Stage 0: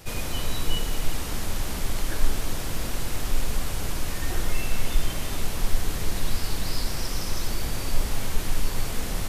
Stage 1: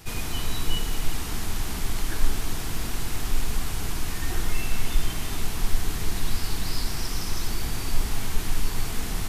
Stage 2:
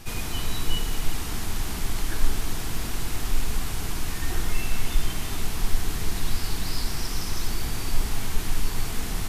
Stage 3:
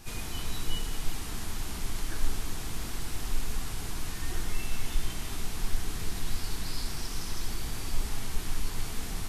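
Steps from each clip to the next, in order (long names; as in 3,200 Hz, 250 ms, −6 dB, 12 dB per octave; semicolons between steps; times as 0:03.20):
parametric band 550 Hz −13 dB 0.24 octaves
backwards echo 1,177 ms −18 dB
level −6 dB; Ogg Vorbis 32 kbit/s 48,000 Hz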